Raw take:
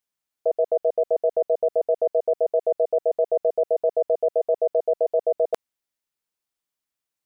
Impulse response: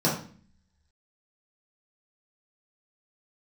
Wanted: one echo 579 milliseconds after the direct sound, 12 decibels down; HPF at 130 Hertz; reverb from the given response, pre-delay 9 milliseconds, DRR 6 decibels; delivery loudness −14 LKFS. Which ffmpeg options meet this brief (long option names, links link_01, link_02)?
-filter_complex "[0:a]highpass=130,aecho=1:1:579:0.251,asplit=2[link_01][link_02];[1:a]atrim=start_sample=2205,adelay=9[link_03];[link_02][link_03]afir=irnorm=-1:irlink=0,volume=-19.5dB[link_04];[link_01][link_04]amix=inputs=2:normalize=0,volume=7.5dB"